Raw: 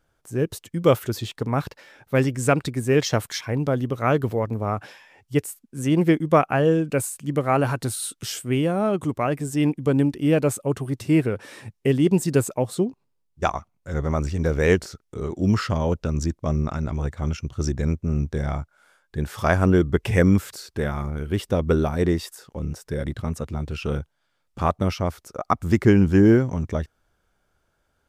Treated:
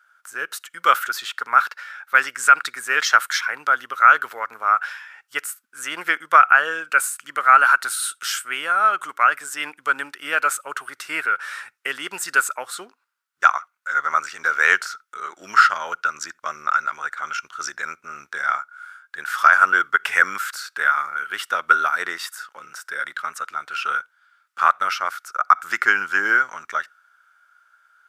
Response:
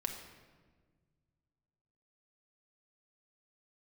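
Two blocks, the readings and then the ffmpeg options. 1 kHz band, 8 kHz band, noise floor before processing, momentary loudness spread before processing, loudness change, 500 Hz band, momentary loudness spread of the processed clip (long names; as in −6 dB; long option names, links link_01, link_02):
+11.0 dB, +4.5 dB, −71 dBFS, 11 LU, +3.5 dB, −12.5 dB, 16 LU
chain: -filter_complex "[0:a]highpass=frequency=1400:width_type=q:width=7.6,asplit=2[link_01][link_02];[1:a]atrim=start_sample=2205,atrim=end_sample=3969[link_03];[link_02][link_03]afir=irnorm=-1:irlink=0,volume=-20dB[link_04];[link_01][link_04]amix=inputs=2:normalize=0,alimiter=level_in=4.5dB:limit=-1dB:release=50:level=0:latency=1,volume=-1dB"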